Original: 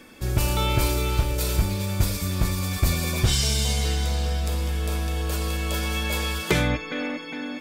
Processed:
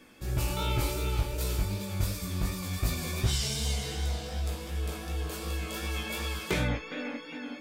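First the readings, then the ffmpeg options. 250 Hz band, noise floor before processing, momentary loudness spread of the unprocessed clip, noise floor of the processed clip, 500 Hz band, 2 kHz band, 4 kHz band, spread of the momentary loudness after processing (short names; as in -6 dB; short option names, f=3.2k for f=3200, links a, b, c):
-7.5 dB, -36 dBFS, 5 LU, -43 dBFS, -7.0 dB, -7.5 dB, -7.5 dB, 6 LU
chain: -af "flanger=delay=15.5:depth=7:speed=2.7,volume=-4.5dB"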